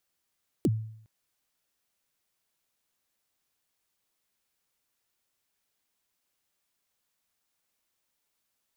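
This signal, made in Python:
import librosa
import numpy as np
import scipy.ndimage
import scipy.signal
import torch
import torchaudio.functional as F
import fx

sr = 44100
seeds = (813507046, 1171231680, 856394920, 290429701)

y = fx.drum_kick(sr, seeds[0], length_s=0.41, level_db=-18.5, start_hz=410.0, end_hz=110.0, sweep_ms=40.0, decay_s=0.66, click=True)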